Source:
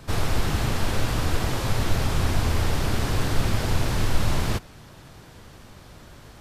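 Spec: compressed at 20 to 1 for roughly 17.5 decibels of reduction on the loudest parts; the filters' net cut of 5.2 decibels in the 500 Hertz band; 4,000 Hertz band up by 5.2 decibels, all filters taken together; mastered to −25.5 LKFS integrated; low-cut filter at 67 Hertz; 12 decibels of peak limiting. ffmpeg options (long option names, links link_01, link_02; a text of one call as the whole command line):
ffmpeg -i in.wav -af "highpass=67,equalizer=frequency=500:width_type=o:gain=-7,equalizer=frequency=4000:width_type=o:gain=6.5,acompressor=threshold=-39dB:ratio=20,volume=23.5dB,alimiter=limit=-17dB:level=0:latency=1" out.wav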